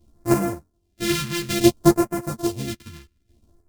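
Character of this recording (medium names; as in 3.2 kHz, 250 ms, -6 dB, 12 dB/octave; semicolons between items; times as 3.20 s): a buzz of ramps at a fixed pitch in blocks of 128 samples; phasing stages 2, 0.59 Hz, lowest notch 630–3400 Hz; chopped level 0.61 Hz, depth 65%, duty 20%; a shimmering, thickened sound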